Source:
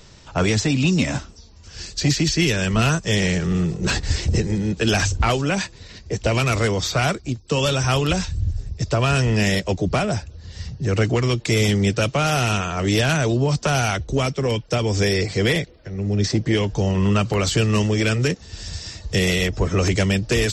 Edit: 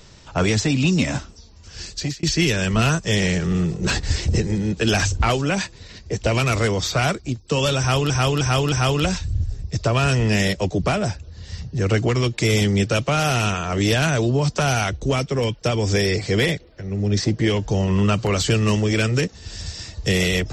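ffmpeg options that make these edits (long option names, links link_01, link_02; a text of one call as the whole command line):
ffmpeg -i in.wav -filter_complex "[0:a]asplit=5[link_01][link_02][link_03][link_04][link_05];[link_01]atrim=end=2.23,asetpts=PTS-STARTPTS,afade=type=out:start_time=1.89:duration=0.34[link_06];[link_02]atrim=start=2.23:end=8.102,asetpts=PTS-STARTPTS,afade=type=in:duration=0.004:curve=hsin[link_07];[link_03]atrim=start=7.788:end=8.102[link_08];[link_04]atrim=start=7.788:end=8.102[link_09];[link_05]atrim=start=7.788[link_10];[link_06][link_07]concat=n=2:v=0:a=1[link_11];[link_11][link_08]acrossfade=duration=0.004:curve1=hsin:curve2=hsin[link_12];[link_12][link_09]acrossfade=duration=0.004:curve1=hsin:curve2=hsin[link_13];[link_13][link_10]acrossfade=duration=0.004:curve1=hsin:curve2=hsin" out.wav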